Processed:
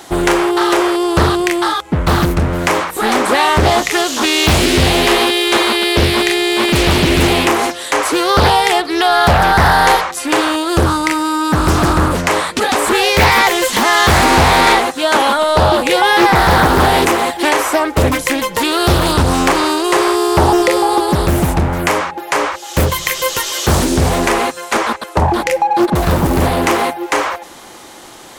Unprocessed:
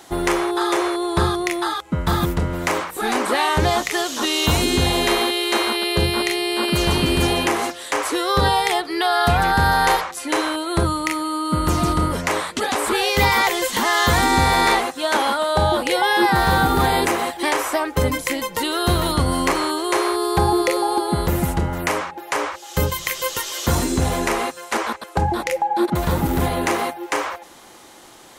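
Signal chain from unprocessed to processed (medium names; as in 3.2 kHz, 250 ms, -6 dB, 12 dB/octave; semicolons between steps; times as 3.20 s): in parallel at -7 dB: hard clipper -24.5 dBFS, distortion -5 dB; on the sum: loudspeaker Doppler distortion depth 0.77 ms; trim +5.5 dB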